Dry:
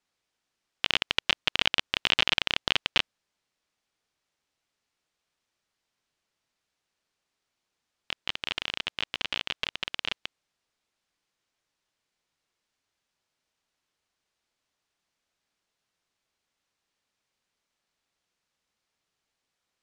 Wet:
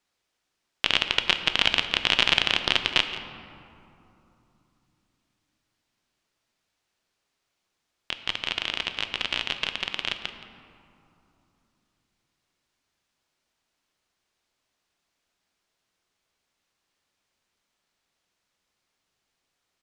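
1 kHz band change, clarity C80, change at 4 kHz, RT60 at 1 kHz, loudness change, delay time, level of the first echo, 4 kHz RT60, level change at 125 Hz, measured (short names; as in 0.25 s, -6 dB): +4.0 dB, 9.0 dB, +3.5 dB, 3.0 s, +3.5 dB, 0.172 s, -16.0 dB, 1.3 s, +4.0 dB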